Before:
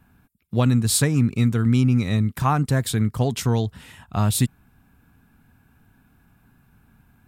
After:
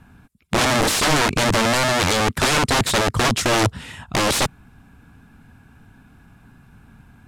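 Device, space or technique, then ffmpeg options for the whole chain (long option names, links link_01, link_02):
overflowing digital effects unit: -filter_complex "[0:a]asettb=1/sr,asplit=3[link_01][link_02][link_03];[link_01]atrim=end=0.794[link_04];[link_02]atrim=start=0.79:end=1.35,asetpts=PTS-STARTPTS,afade=type=in:duration=0.004:curve=qsin,afade=type=out:start_time=0.556:duration=0.004:curve=qsin,lowshelf=frequency=180:gain=3.5[link_05];[link_03]atrim=start=1.346[link_06];[link_04][link_05]acrossfade=duration=0.004:curve1=hsin:curve2=qsin[link_07];[link_07][link_06]acrossfade=duration=0.004:curve1=qsin:curve2=hsin,aeval=exprs='(mod(10.6*val(0)+1,2)-1)/10.6':channel_layout=same,lowpass=8900,volume=8.5dB"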